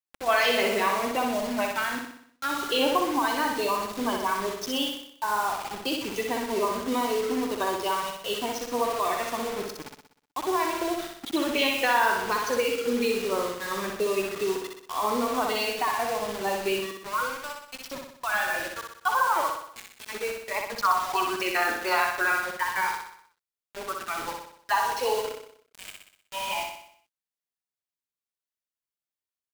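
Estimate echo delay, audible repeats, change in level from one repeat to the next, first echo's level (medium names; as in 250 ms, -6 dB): 62 ms, 6, -5.5 dB, -4.0 dB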